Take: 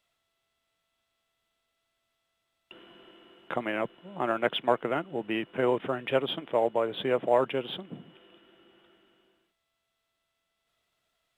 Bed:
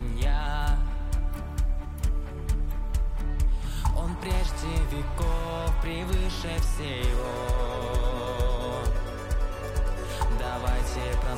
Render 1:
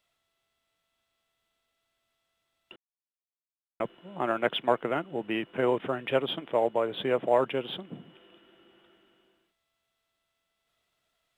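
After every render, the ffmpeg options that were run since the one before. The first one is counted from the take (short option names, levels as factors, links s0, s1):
-filter_complex "[0:a]asplit=3[s0][s1][s2];[s0]atrim=end=2.76,asetpts=PTS-STARTPTS,afade=t=out:st=2.756:d=0.004:c=hsin[s3];[s1]atrim=start=2.76:end=3.8,asetpts=PTS-STARTPTS,volume=0[s4];[s2]atrim=start=3.8,asetpts=PTS-STARTPTS,afade=t=in:d=0.004:c=hsin[s5];[s3][s4][s5]concat=n=3:v=0:a=1"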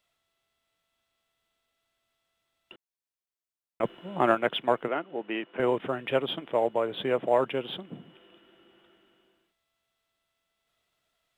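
-filter_complex "[0:a]asettb=1/sr,asplit=3[s0][s1][s2];[s0]atrim=end=3.834[s3];[s1]atrim=start=3.83:end=4.35,asetpts=PTS-STARTPTS,afade=t=in:d=0.004:c=qsin,afade=t=out:st=0.516:d=0.004:c=qsin,acontrast=57[s4];[s2]atrim=start=4.346[s5];[s3][s4]acrossfade=d=0.004:c1=hsin:c2=qsin[s6];[s6][s5]acrossfade=d=0.004:c1=qsin:c2=hsin,asettb=1/sr,asplit=3[s7][s8][s9];[s7]atrim=end=4.884[s10];[s8]atrim=start=4.88:end=5.6,asetpts=PTS-STARTPTS,afade=t=in:d=0.004:c=qsin,afade=t=out:st=0.716:d=0.004:c=qsin,highpass=280,lowpass=3600[s11];[s9]atrim=start=5.596[s12];[s10][s11]acrossfade=d=0.004:c1=hsin:c2=qsin[s13];[s13][s12]acrossfade=d=0.004:c1=qsin:c2=hsin"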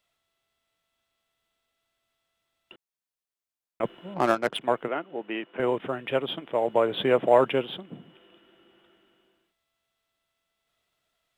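-filter_complex "[0:a]asettb=1/sr,asplit=3[s0][s1][s2];[s0]atrim=end=4.144[s3];[s1]atrim=start=4.14:end=4.61,asetpts=PTS-STARTPTS,afade=t=in:d=0.004:c=qsin,afade=t=out:st=0.466:d=0.004:c=qsin,adynamicsmooth=sensitivity=4.5:basefreq=950[s4];[s2]atrim=start=4.606[s5];[s3][s4]acrossfade=d=0.004:c1=hsin:c2=qsin[s6];[s6][s5]acrossfade=d=0.004:c1=qsin:c2=hsin,asettb=1/sr,asplit=3[s7][s8][s9];[s7]atrim=end=6.684[s10];[s8]atrim=start=6.68:end=7.65,asetpts=PTS-STARTPTS,afade=t=in:d=0.004:c=qsin,afade=t=out:st=0.966:d=0.004:c=qsin,acontrast=32[s11];[s9]atrim=start=7.646[s12];[s10][s11]acrossfade=d=0.004:c1=hsin:c2=qsin[s13];[s13][s12]acrossfade=d=0.004:c1=qsin:c2=hsin"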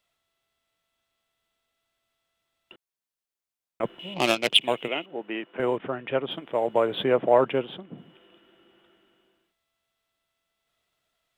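-filter_complex "[0:a]asettb=1/sr,asplit=3[s0][s1][s2];[s0]atrim=end=3.994[s3];[s1]atrim=start=3.99:end=5.06,asetpts=PTS-STARTPTS,afade=t=in:d=0.004:c=qsin,afade=t=out:st=1.066:d=0.004:c=qsin,highshelf=f=2000:t=q:w=3:g=10[s4];[s2]atrim=start=5.056[s5];[s3][s4]acrossfade=d=0.004:c1=hsin:c2=qsin[s6];[s6][s5]acrossfade=d=0.004:c1=qsin:c2=hsin,asettb=1/sr,asplit=3[s7][s8][s9];[s7]atrim=end=5.774[s10];[s8]atrim=start=5.77:end=6.31,asetpts=PTS-STARTPTS,afade=t=in:d=0.004:c=qsin,afade=t=out:st=0.536:d=0.004:c=qsin,lowpass=3000[s11];[s9]atrim=start=6.306[s12];[s10][s11]acrossfade=d=0.004:c1=hsin:c2=qsin[s13];[s13][s12]acrossfade=d=0.004:c1=qsin:c2=hsin,asettb=1/sr,asplit=3[s14][s15][s16];[s14]atrim=end=7.044[s17];[s15]atrim=start=7.04:end=7.98,asetpts=PTS-STARTPTS,afade=t=in:d=0.004:c=qsin,afade=t=out:st=0.936:d=0.004:c=qsin,highshelf=f=4000:g=-11[s18];[s16]atrim=start=7.976[s19];[s17][s18]acrossfade=d=0.004:c1=hsin:c2=qsin[s20];[s20][s19]acrossfade=d=0.004:c1=qsin:c2=hsin"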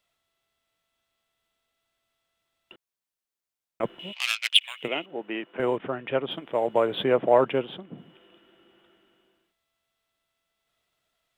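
-filter_complex "[0:a]asplit=3[s0][s1][s2];[s0]afade=t=out:st=4.11:d=0.02[s3];[s1]highpass=f=1500:w=0.5412,highpass=f=1500:w=1.3066,afade=t=in:st=4.11:d=0.02,afade=t=out:st=4.82:d=0.02[s4];[s2]afade=t=in:st=4.82:d=0.02[s5];[s3][s4][s5]amix=inputs=3:normalize=0"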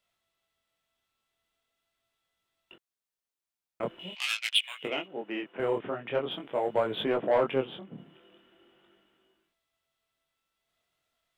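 -af "asoftclip=type=tanh:threshold=0.224,flanger=delay=18.5:depth=7.8:speed=0.43"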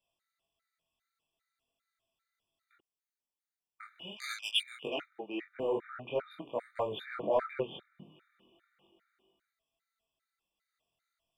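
-af "flanger=delay=19.5:depth=5.3:speed=1.6,afftfilt=real='re*gt(sin(2*PI*2.5*pts/sr)*(1-2*mod(floor(b*sr/1024/1200),2)),0)':imag='im*gt(sin(2*PI*2.5*pts/sr)*(1-2*mod(floor(b*sr/1024/1200),2)),0)':win_size=1024:overlap=0.75"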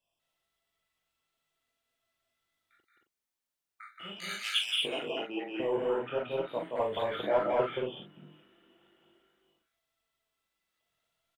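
-filter_complex "[0:a]asplit=2[s0][s1];[s1]adelay=40,volume=0.501[s2];[s0][s2]amix=inputs=2:normalize=0,asplit=2[s3][s4];[s4]aecho=0:1:174.9|227.4:0.708|0.794[s5];[s3][s5]amix=inputs=2:normalize=0"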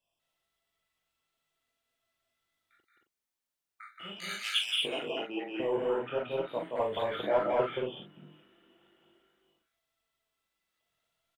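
-af anull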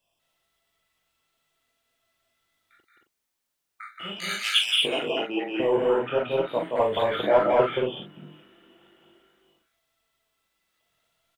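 -af "volume=2.51"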